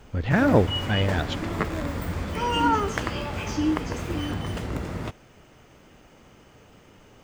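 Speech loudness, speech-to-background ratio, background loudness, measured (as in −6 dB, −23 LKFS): −23.5 LKFS, 4.5 dB, −28.0 LKFS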